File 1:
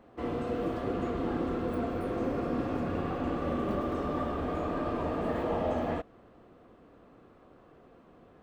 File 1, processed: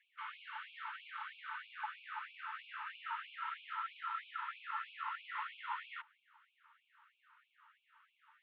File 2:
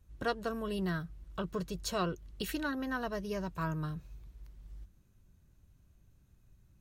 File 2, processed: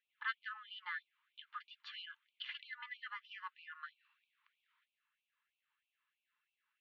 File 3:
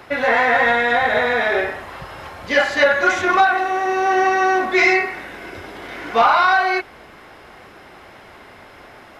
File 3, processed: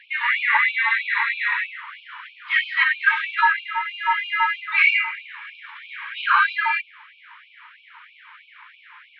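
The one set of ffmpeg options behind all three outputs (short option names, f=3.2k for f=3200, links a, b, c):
-af "highpass=f=340:t=q:w=0.5412,highpass=f=340:t=q:w=1.307,lowpass=f=3.2k:t=q:w=0.5176,lowpass=f=3.2k:t=q:w=0.7071,lowpass=f=3.2k:t=q:w=1.932,afreqshift=160,afftfilt=real='re*gte(b*sr/1024,850*pow(2300/850,0.5+0.5*sin(2*PI*3.1*pts/sr)))':imag='im*gte(b*sr/1024,850*pow(2300/850,0.5+0.5*sin(2*PI*3.1*pts/sr)))':win_size=1024:overlap=0.75"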